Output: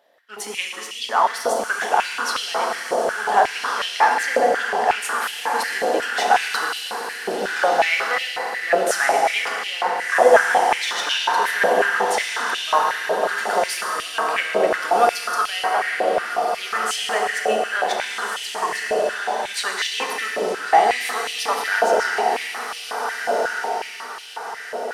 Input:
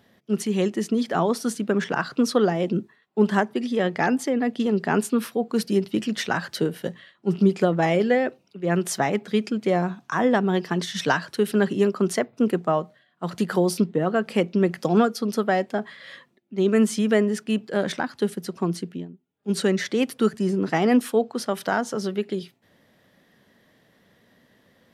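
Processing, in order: waveshaping leveller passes 1; echo that smears into a reverb 1497 ms, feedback 48%, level -4 dB; FDN reverb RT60 2.7 s, high-frequency decay 0.95×, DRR 0 dB; step-sequenced high-pass 5.5 Hz 610–2900 Hz; trim -2.5 dB

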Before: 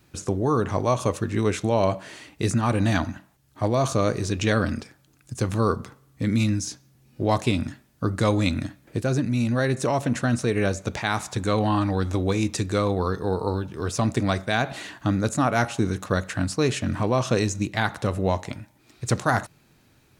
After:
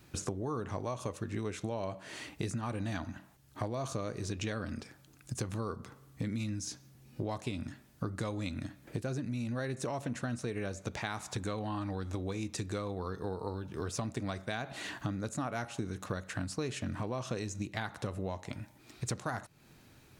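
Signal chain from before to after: compression 6:1, threshold -34 dBFS, peak gain reduction 17 dB

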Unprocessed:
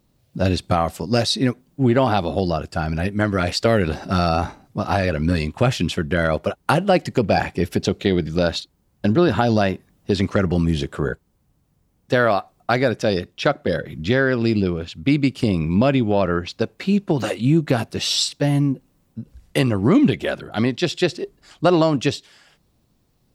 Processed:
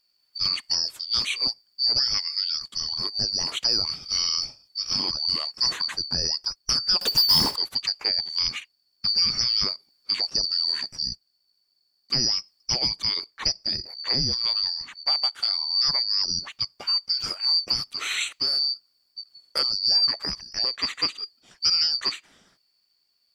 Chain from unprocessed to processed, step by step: four frequency bands reordered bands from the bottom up 2341; 7.01–7.56 s: power-law waveshaper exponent 0.5; trim -6.5 dB

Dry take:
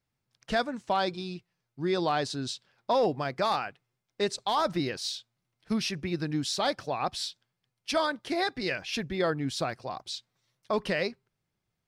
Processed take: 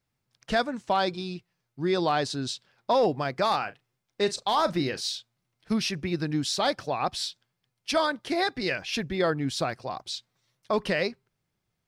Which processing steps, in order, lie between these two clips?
3.56–5.13 s: doubling 37 ms -13.5 dB; trim +2.5 dB

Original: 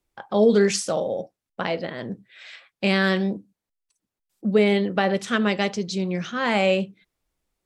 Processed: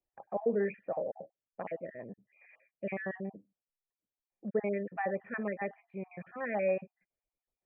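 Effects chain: random holes in the spectrogram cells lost 36%; peaking EQ 1.5 kHz -6 dB 0.4 oct, from 1.86 s -14.5 dB, from 4.48 s -4 dB; rippled Chebyshev low-pass 2.5 kHz, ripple 9 dB; trim -7 dB

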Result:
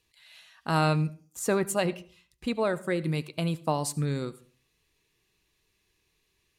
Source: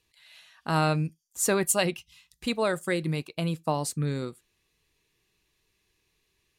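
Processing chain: 1.39–3.03 s: treble shelf 2.3 kHz -9 dB; on a send: reverberation RT60 0.40 s, pre-delay 67 ms, DRR 18 dB

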